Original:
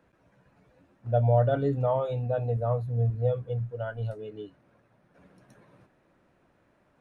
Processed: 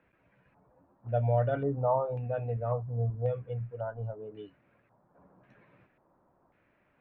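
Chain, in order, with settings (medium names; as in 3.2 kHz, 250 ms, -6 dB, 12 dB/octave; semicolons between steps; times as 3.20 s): 1.50–3.88 s: low-pass 3.2 kHz 12 dB/octave; LFO low-pass square 0.92 Hz 980–2400 Hz; trim -5 dB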